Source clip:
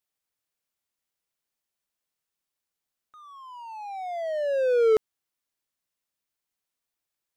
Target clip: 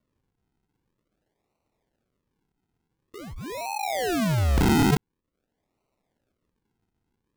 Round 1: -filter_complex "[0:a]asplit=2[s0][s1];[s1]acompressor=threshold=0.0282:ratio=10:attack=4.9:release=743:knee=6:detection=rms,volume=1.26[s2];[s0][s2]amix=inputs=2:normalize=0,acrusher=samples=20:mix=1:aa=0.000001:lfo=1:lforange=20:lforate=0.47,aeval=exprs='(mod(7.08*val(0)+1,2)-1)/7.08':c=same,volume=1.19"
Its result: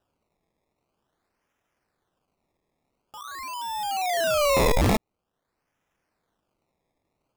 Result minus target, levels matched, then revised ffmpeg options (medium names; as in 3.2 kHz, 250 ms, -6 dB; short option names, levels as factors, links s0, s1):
decimation with a swept rate: distortion -11 dB
-filter_complex "[0:a]asplit=2[s0][s1];[s1]acompressor=threshold=0.0282:ratio=10:attack=4.9:release=743:knee=6:detection=rms,volume=1.26[s2];[s0][s2]amix=inputs=2:normalize=0,acrusher=samples=52:mix=1:aa=0.000001:lfo=1:lforange=52:lforate=0.47,aeval=exprs='(mod(7.08*val(0)+1,2)-1)/7.08':c=same,volume=1.19"